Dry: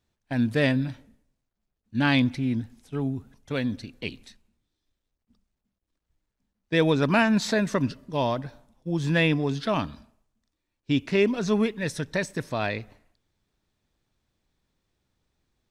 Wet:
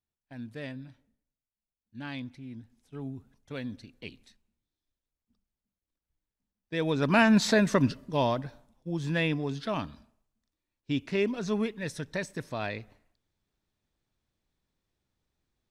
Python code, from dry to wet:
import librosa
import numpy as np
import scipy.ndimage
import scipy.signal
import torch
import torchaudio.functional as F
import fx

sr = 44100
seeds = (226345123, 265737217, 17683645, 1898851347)

y = fx.gain(x, sr, db=fx.line((2.49, -17.0), (3.1, -9.5), (6.75, -9.5), (7.28, 1.0), (7.9, 1.0), (9.05, -6.0)))